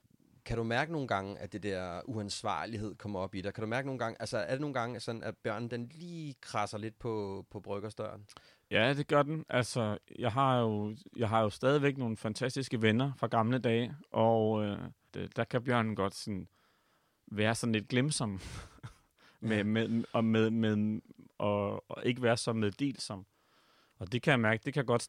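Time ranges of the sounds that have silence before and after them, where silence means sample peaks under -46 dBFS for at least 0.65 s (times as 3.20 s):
17.28–23.22 s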